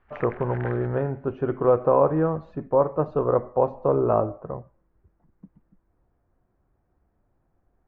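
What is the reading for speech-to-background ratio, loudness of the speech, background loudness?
18.5 dB, -24.0 LUFS, -42.5 LUFS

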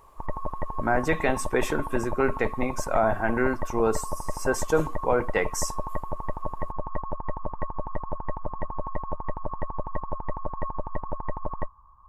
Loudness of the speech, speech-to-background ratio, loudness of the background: -27.0 LUFS, 8.5 dB, -35.5 LUFS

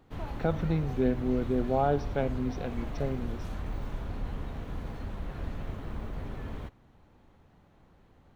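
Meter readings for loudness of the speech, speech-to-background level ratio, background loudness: -31.0 LUFS, 8.5 dB, -39.5 LUFS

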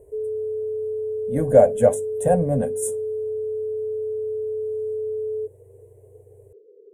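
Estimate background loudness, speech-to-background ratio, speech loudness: -28.0 LUFS, 7.5 dB, -20.5 LUFS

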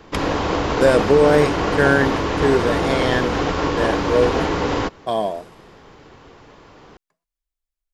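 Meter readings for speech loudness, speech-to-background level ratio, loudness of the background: -19.5 LUFS, 1.5 dB, -21.0 LUFS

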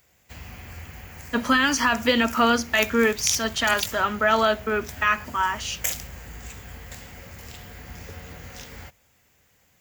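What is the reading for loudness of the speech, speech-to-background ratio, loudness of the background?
-22.0 LUFS, 13.5 dB, -35.5 LUFS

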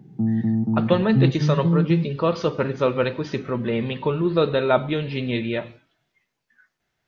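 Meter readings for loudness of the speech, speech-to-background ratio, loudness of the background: -23.5 LUFS, -1.0 dB, -22.5 LUFS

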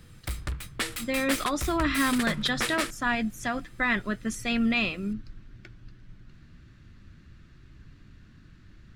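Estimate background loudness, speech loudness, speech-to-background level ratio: -33.0 LUFS, -28.0 LUFS, 5.0 dB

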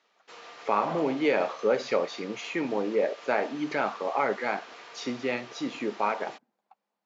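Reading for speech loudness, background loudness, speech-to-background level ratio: -29.5 LUFS, -46.0 LUFS, 16.5 dB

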